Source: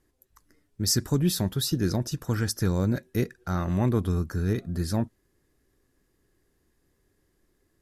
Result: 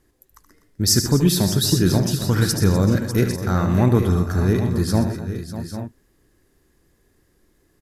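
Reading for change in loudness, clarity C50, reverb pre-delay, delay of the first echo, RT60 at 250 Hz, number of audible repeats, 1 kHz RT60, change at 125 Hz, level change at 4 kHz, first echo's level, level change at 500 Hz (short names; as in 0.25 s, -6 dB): +8.0 dB, none, none, 75 ms, none, 6, none, +8.5 dB, +8.5 dB, -10.0 dB, +8.5 dB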